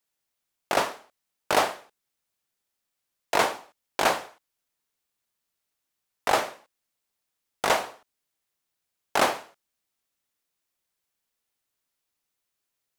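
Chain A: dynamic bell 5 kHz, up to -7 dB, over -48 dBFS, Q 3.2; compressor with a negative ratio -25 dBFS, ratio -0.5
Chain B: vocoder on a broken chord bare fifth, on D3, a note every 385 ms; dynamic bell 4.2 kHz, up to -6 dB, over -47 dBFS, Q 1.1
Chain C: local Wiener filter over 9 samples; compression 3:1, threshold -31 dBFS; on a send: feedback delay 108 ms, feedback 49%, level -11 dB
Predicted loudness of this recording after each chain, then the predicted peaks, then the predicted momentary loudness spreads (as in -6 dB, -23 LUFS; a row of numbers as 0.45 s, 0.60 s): -30.0 LUFS, -28.5 LUFS, -35.5 LUFS; -8.5 dBFS, -9.5 dBFS, -14.0 dBFS; 12 LU, 15 LU, 17 LU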